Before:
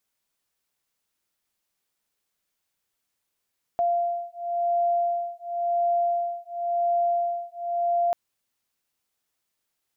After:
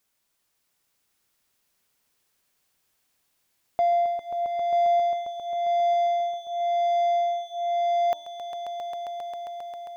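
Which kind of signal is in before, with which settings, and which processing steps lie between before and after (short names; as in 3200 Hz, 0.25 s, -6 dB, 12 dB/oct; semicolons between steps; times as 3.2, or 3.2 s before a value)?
beating tones 692 Hz, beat 0.94 Hz, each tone -25.5 dBFS 4.34 s
de-hum 304.5 Hz, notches 3; in parallel at -3 dB: soft clip -31 dBFS; on the sum: swelling echo 0.134 s, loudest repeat 5, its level -9.5 dB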